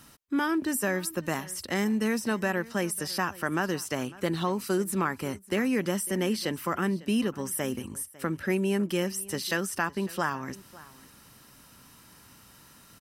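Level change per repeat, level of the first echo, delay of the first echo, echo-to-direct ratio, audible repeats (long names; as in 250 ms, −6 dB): repeats not evenly spaced, −20.5 dB, 551 ms, −20.5 dB, 1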